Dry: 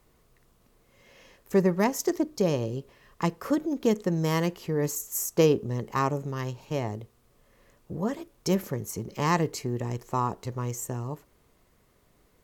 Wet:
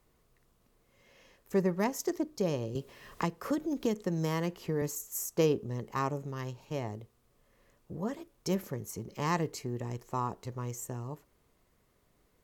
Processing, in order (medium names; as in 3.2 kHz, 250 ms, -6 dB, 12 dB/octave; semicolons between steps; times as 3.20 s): 2.75–4.82 s: three bands compressed up and down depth 70%; trim -6 dB